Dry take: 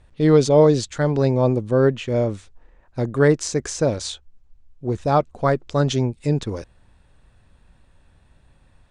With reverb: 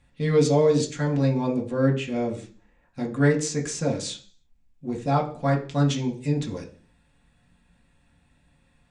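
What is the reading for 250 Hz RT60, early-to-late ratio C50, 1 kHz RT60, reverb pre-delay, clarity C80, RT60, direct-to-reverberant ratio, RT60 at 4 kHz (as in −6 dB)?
0.60 s, 12.0 dB, 0.40 s, 3 ms, 17.0 dB, 0.45 s, −1.0 dB, 0.50 s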